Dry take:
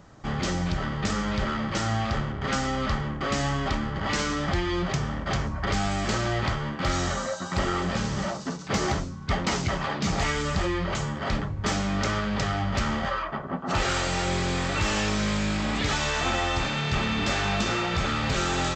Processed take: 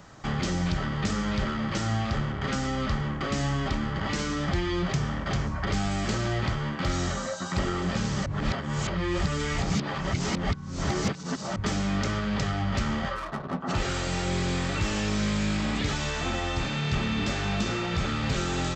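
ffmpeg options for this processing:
ffmpeg -i in.wav -filter_complex "[0:a]asplit=3[link_01][link_02][link_03];[link_01]afade=type=out:start_time=13.15:duration=0.02[link_04];[link_02]adynamicsmooth=sensitivity=6.5:basefreq=940,afade=type=in:start_time=13.15:duration=0.02,afade=type=out:start_time=13.59:duration=0.02[link_05];[link_03]afade=type=in:start_time=13.59:duration=0.02[link_06];[link_04][link_05][link_06]amix=inputs=3:normalize=0,asplit=3[link_07][link_08][link_09];[link_07]atrim=end=8.262[link_10];[link_08]atrim=start=8.258:end=11.562,asetpts=PTS-STARTPTS,areverse[link_11];[link_09]atrim=start=11.558[link_12];[link_10][link_11]acrossfade=duration=0.004:curve1=hsin:curve2=hsin[link_13];[link_13][link_12]acrossfade=duration=0.004:curve1=hsin:curve2=hsin,tiltshelf=frequency=780:gain=-3.5,acrossover=split=460[link_14][link_15];[link_15]acompressor=threshold=-37dB:ratio=3[link_16];[link_14][link_16]amix=inputs=2:normalize=0,equalizer=frequency=150:width=1.5:gain=2,volume=2.5dB" out.wav

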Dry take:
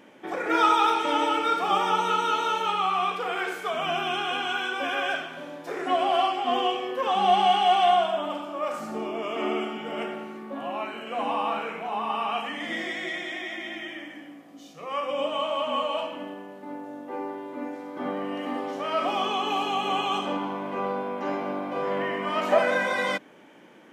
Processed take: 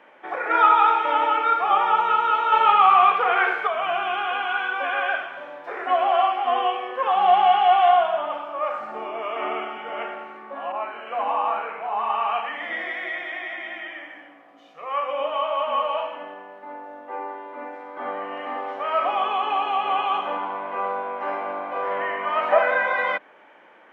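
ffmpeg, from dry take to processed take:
ffmpeg -i in.wav -filter_complex "[0:a]asettb=1/sr,asplit=3[link_01][link_02][link_03];[link_01]atrim=end=2.524[link_04];[link_02]atrim=start=2.52:end=3.67,asetpts=PTS-STARTPTS,afade=type=in:duration=0.004:curve=qsin,afade=type=out:start_time=1.146:duration=0.004:curve=qsin,acontrast=47[link_05];[link_03]atrim=start=3.666[link_06];[link_04][link_05]acrossfade=duration=0.004:curve1=hsin:curve2=qsin[link_07];[link_07][link_06]acrossfade=duration=0.004:curve1=qsin:curve2=hsin,asettb=1/sr,asplit=3[link_08][link_09][link_10];[link_08]atrim=end=10.724[link_11];[link_09]atrim=start=10.72:end=11.99,asetpts=PTS-STARTPTS,afade=type=in:duration=0.004:curve=qsin,afade=type=out:start_time=1.266:duration=0.004:curve=qsin,adynamicequalizer=threshold=0.01:dfrequency=1700:dqfactor=0.7:tfrequency=1700:tqfactor=0.7:attack=5:release=100:ratio=0.375:range=3:mode=cutabove:tftype=highshelf[link_12];[link_10]atrim=start=11.986[link_13];[link_11][link_12]acrossfade=duration=0.004:curve1=hsin:curve2=qsin[link_14];[link_14][link_13]acrossfade=duration=0.004:curve1=qsin:curve2=hsin,acrossover=split=4500[link_15][link_16];[link_16]acompressor=threshold=-58dB:ratio=4:attack=1:release=60[link_17];[link_15][link_17]amix=inputs=2:normalize=0,acrossover=split=540 2600:gain=0.1 1 0.0794[link_18][link_19][link_20];[link_18][link_19][link_20]amix=inputs=3:normalize=0,volume=6dB" out.wav

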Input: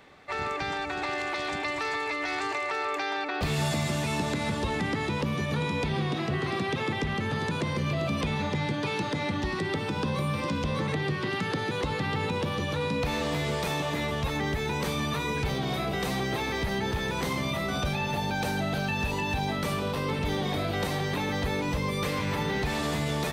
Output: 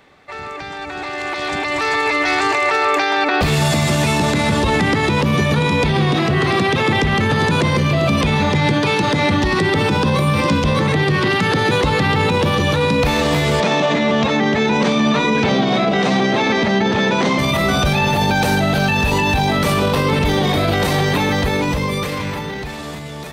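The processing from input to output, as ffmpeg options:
ffmpeg -i in.wav -filter_complex "[0:a]asettb=1/sr,asplit=3[link_01][link_02][link_03];[link_01]atrim=end=13.604[link_04];[link_02]atrim=start=13.6:end=17.39,asetpts=PTS-STARTPTS,afade=type=in:duration=0.004:curve=qsin,afade=type=out:start_time=3.786:duration=0.004:curve=qsin,highpass=frequency=120:width=0.5412,highpass=frequency=120:width=1.3066,equalizer=frequency=140:width_type=q:width=4:gain=-7,equalizer=frequency=220:width_type=q:width=4:gain=9,equalizer=frequency=620:width_type=q:width=4:gain=5,equalizer=frequency=4800:width_type=q:width=4:gain=-3,lowpass=frequency=6200:width=0.5412,lowpass=frequency=6200:width=1.3066[link_05];[link_03]atrim=start=17.386[link_06];[link_04][link_05]acrossfade=duration=0.004:curve1=hsin:curve2=qsin[link_07];[link_07][link_06]acrossfade=duration=0.004:curve1=qsin:curve2=hsin,alimiter=level_in=1.5dB:limit=-24dB:level=0:latency=1:release=33,volume=-1.5dB,dynaudnorm=framelen=190:gausssize=17:maxgain=14dB,volume=3.5dB" out.wav

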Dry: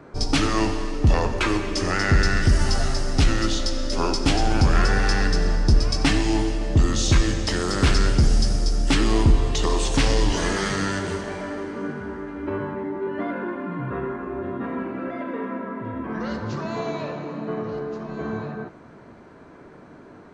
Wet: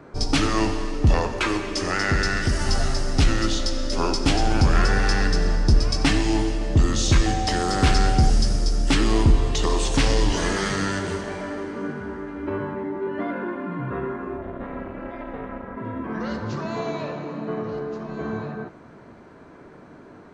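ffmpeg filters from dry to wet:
ffmpeg -i in.wav -filter_complex "[0:a]asettb=1/sr,asplit=3[link_01][link_02][link_03];[link_01]atrim=end=1.224[link_04];[link_02]atrim=start=1.22:end=2.67,asetpts=PTS-STARTPTS,afade=type=in:duration=0.004:curve=qsin,afade=type=out:start_time=1.446:duration=0.004:curve=qsin,lowshelf=frequency=180:gain=-6.5[link_05];[link_03]atrim=start=2.666[link_06];[link_04][link_05]acrossfade=duration=0.004:curve1=hsin:curve2=qsin[link_07];[link_07][link_06]acrossfade=duration=0.004:curve1=qsin:curve2=hsin,asettb=1/sr,asplit=3[link_08][link_09][link_10];[link_08]atrim=end=7.264[link_11];[link_09]atrim=start=7.26:end=8.3,asetpts=PTS-STARTPTS,afade=type=in:duration=0.004:curve=qsin,afade=type=out:start_time=1.036:duration=0.004:curve=qsin,aeval=exprs='val(0)+0.0501*sin(2*PI*760*n/s)':channel_layout=same[link_12];[link_10]atrim=start=8.296[link_13];[link_11][link_12]acrossfade=duration=0.004:curve1=hsin:curve2=qsin[link_14];[link_14][link_13]acrossfade=duration=0.004:curve1=qsin:curve2=hsin,asplit=3[link_15][link_16][link_17];[link_15]afade=type=out:start_time=14.36:duration=0.02[link_18];[link_16]tremolo=f=300:d=1,afade=type=in:start_time=14.36:duration=0.02,afade=type=out:start_time=15.76:duration=0.02[link_19];[link_17]afade=type=in:start_time=15.76:duration=0.02[link_20];[link_18][link_19][link_20]amix=inputs=3:normalize=0" out.wav

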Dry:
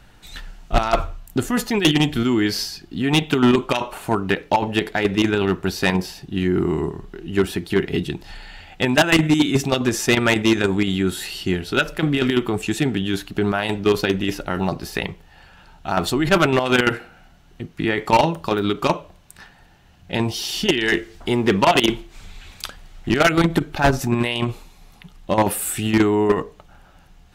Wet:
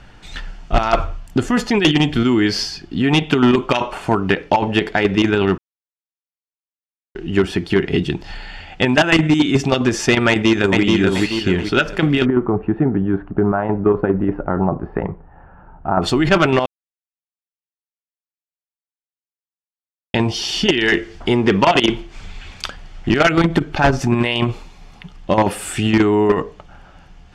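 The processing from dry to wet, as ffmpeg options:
ffmpeg -i in.wav -filter_complex "[0:a]asplit=2[link_01][link_02];[link_02]afade=type=in:start_time=10.29:duration=0.01,afade=type=out:start_time=10.82:duration=0.01,aecho=0:1:430|860|1290|1720|2150:0.749894|0.262463|0.091862|0.0321517|0.0112531[link_03];[link_01][link_03]amix=inputs=2:normalize=0,asplit=3[link_04][link_05][link_06];[link_04]afade=type=out:start_time=12.24:duration=0.02[link_07];[link_05]lowpass=frequency=1300:width=0.5412,lowpass=frequency=1300:width=1.3066,afade=type=in:start_time=12.24:duration=0.02,afade=type=out:start_time=16.01:duration=0.02[link_08];[link_06]afade=type=in:start_time=16.01:duration=0.02[link_09];[link_07][link_08][link_09]amix=inputs=3:normalize=0,asplit=5[link_10][link_11][link_12][link_13][link_14];[link_10]atrim=end=5.58,asetpts=PTS-STARTPTS,afade=type=out:start_time=5.576:duration=0.004:curve=hsin[link_15];[link_11]atrim=start=5.58:end=7.15,asetpts=PTS-STARTPTS,volume=0[link_16];[link_12]atrim=start=7.15:end=16.66,asetpts=PTS-STARTPTS,afade=type=in:duration=0.004:curve=hsin,afade=type=out:start_time=9.506:duration=0.004:curve=hsin[link_17];[link_13]atrim=start=16.66:end=20.14,asetpts=PTS-STARTPTS,volume=0[link_18];[link_14]atrim=start=20.14,asetpts=PTS-STARTPTS,afade=type=in:duration=0.004:curve=hsin[link_19];[link_15][link_16][link_17][link_18][link_19]concat=n=5:v=0:a=1,lowpass=5600,bandreject=frequency=3900:width=10,acompressor=threshold=-19dB:ratio=2,volume=6dB" out.wav

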